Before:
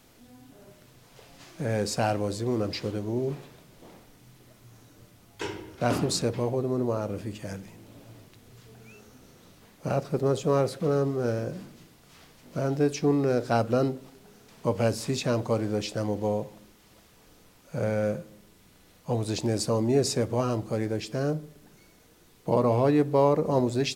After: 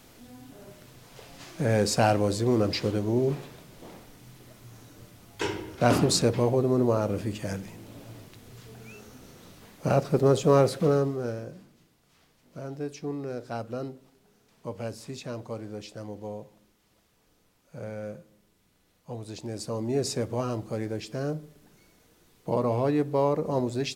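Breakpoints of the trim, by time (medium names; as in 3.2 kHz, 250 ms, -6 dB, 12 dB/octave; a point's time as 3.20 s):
10.83 s +4 dB
11.18 s -3 dB
11.64 s -10 dB
19.39 s -10 dB
20.07 s -3 dB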